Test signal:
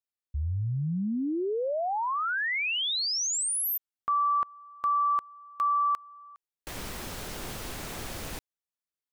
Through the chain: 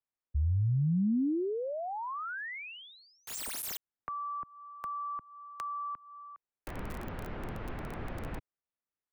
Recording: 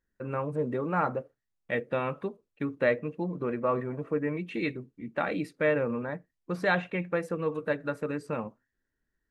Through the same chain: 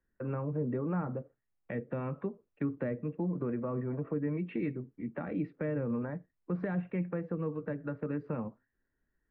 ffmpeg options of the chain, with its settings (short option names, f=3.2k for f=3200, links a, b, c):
-filter_complex "[0:a]acrossover=split=300[a][b];[b]acompressor=threshold=-37dB:ratio=10:attack=2.9:release=406:knee=2.83:detection=peak[c];[a][c]amix=inputs=2:normalize=0,acrossover=split=150|2400[d][e][f];[f]acrusher=bits=5:mix=0:aa=0.000001[g];[d][e][g]amix=inputs=3:normalize=0,volume=1.5dB"